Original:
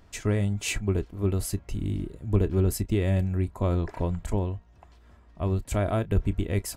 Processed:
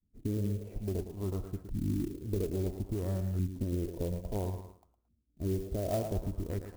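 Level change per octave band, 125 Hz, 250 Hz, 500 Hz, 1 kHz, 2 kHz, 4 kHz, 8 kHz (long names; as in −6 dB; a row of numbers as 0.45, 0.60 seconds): −8.0, −6.5, −6.5, −9.0, −18.5, −14.0, −14.5 decibels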